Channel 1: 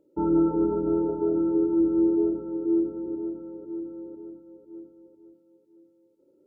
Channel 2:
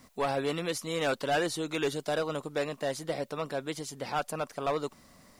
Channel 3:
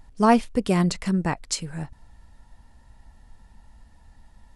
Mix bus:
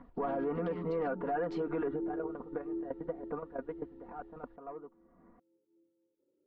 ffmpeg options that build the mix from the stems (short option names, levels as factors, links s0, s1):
-filter_complex "[0:a]volume=0.178[s0];[1:a]lowpass=f=1400:w=0.5412,lowpass=f=1400:w=1.3066,aecho=1:1:4.2:0.95,acompressor=mode=upward:threshold=0.0316:ratio=2.5,volume=1.06[s1];[2:a]acompressor=threshold=0.0398:ratio=2,asoftclip=type=tanh:threshold=0.0668,volume=0.224,asplit=2[s2][s3];[s3]apad=whole_len=238001[s4];[s1][s4]sidechaingate=range=0.112:threshold=0.00126:ratio=16:detection=peak[s5];[s0][s5][s2]amix=inputs=3:normalize=0,lowpass=f=3500:w=0.5412,lowpass=f=3500:w=1.3066,alimiter=level_in=1.33:limit=0.0631:level=0:latency=1:release=61,volume=0.75"